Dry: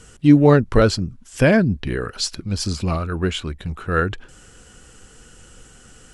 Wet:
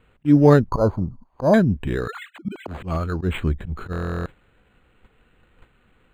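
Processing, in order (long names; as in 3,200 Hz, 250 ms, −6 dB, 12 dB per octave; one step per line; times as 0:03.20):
0:02.08–0:02.67: three sine waves on the formant tracks
0:03.21–0:03.93: low-shelf EQ 390 Hz +8 dB
volume swells 132 ms
0:00.68–0:01.54: drawn EQ curve 440 Hz 0 dB, 1,000 Hz +14 dB, 1,900 Hz −26 dB
noise gate −41 dBFS, range −12 dB
buffer that repeats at 0:03.91, samples 1,024, times 14
linearly interpolated sample-rate reduction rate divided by 8×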